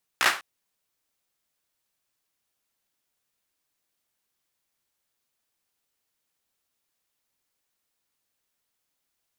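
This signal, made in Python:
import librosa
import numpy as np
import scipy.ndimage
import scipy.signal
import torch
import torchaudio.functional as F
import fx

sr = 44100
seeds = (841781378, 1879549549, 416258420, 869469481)

y = fx.drum_clap(sr, seeds[0], length_s=0.2, bursts=4, spacing_ms=16, hz=1400.0, decay_s=0.31)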